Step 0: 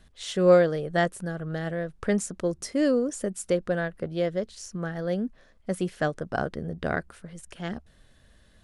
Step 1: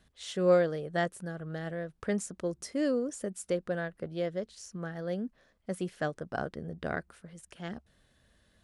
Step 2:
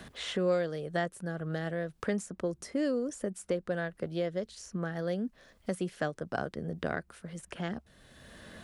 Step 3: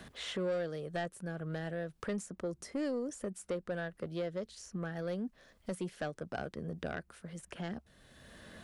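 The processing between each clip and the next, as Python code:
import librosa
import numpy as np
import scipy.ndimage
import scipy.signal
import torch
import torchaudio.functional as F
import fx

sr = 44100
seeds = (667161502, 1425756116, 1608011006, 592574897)

y1 = fx.highpass(x, sr, hz=63.0, slope=6)
y1 = F.gain(torch.from_numpy(y1), -6.0).numpy()
y2 = fx.band_squash(y1, sr, depth_pct=70)
y3 = 10.0 ** (-25.0 / 20.0) * np.tanh(y2 / 10.0 ** (-25.0 / 20.0))
y3 = F.gain(torch.from_numpy(y3), -3.0).numpy()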